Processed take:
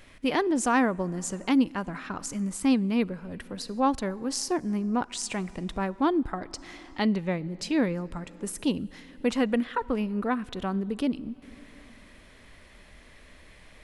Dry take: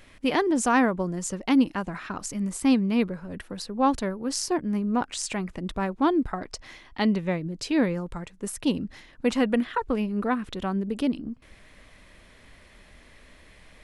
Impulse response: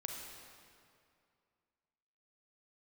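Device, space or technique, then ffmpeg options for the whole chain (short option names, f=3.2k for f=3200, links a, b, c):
ducked reverb: -filter_complex "[0:a]asplit=3[a][b][c];[1:a]atrim=start_sample=2205[d];[b][d]afir=irnorm=-1:irlink=0[e];[c]apad=whole_len=610151[f];[e][f]sidechaincompress=threshold=-33dB:ratio=8:attack=26:release=622,volume=-7dB[g];[a][g]amix=inputs=2:normalize=0,volume=-2.5dB"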